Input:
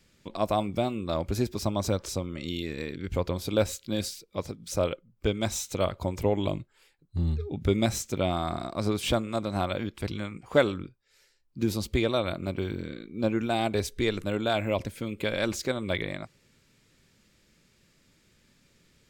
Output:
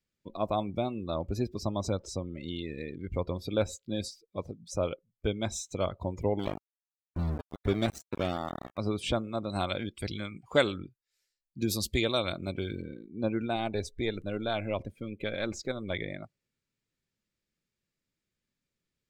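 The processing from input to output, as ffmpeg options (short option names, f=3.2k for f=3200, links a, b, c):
-filter_complex "[0:a]asettb=1/sr,asplit=3[a][b][c];[a]atrim=end=6.394[d];[b]atrim=start=6.39:end=8.78,asetpts=PTS-STARTPTS,afade=t=in:d=0.004:c=qsin,afade=t=out:st=2.386:d=0.004:c=qsin,aeval=exprs='val(0)*gte(abs(val(0)),0.0447)':c=same[e];[c]atrim=start=8.776[f];[d][e]acrossfade=d=0.004:c1=hsin:c2=qsin[g];[g][f]acrossfade=d=0.004:c1=qsin:c2=hsin,asettb=1/sr,asplit=3[h][i][j];[h]atrim=end=9.494[k];[i]atrim=start=9.49:end=12.82,asetpts=PTS-STARTPTS,afade=t=in:d=0.004:c=qsin,afade=t=out:st=3.326:d=0.004:c=qsin,highshelf=f=2.8k:g=11[l];[j]atrim=start=12.816[m];[k][l]acrossfade=d=0.004:c1=hsin:c2=qsin[n];[n][m]acrossfade=d=0.004:c1=qsin:c2=hsin,asettb=1/sr,asplit=3[o][p][q];[o]atrim=end=13.564[r];[p]atrim=start=13.56:end=15.96,asetpts=PTS-STARTPTS,afade=t=in:d=0.004:c=qsin,afade=t=out:st=2.396:d=0.004:c=qsin,aeval=exprs='if(lt(val(0),0),0.708*val(0),val(0))':c=same[s];[q]atrim=start=15.956[t];[r][s]acrossfade=d=0.004:c1=hsin:c2=qsin[u];[u][t]acrossfade=d=0.004:c1=qsin:c2=hsin,afftdn=nr=20:nf=-40,volume=-3.5dB"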